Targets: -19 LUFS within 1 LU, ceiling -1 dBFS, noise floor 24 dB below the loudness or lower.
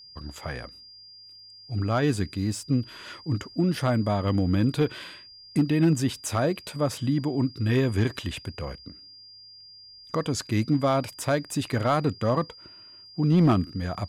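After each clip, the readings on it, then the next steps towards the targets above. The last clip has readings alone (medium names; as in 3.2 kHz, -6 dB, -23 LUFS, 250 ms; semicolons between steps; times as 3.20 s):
clipped samples 0.4%; clipping level -14.0 dBFS; steady tone 4.8 kHz; tone level -46 dBFS; loudness -26.0 LUFS; peak level -14.0 dBFS; loudness target -19.0 LUFS
-> clip repair -14 dBFS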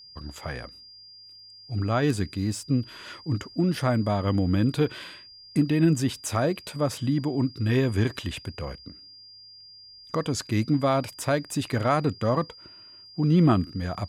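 clipped samples 0.0%; steady tone 4.8 kHz; tone level -46 dBFS
-> band-stop 4.8 kHz, Q 30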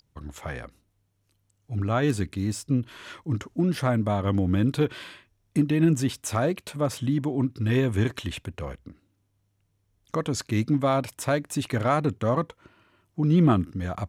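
steady tone not found; loudness -26.0 LUFS; peak level -10.0 dBFS; loudness target -19.0 LUFS
-> trim +7 dB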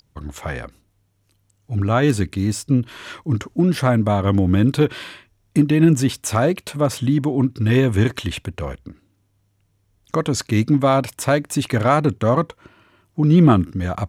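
loudness -19.0 LUFS; peak level -3.0 dBFS; noise floor -64 dBFS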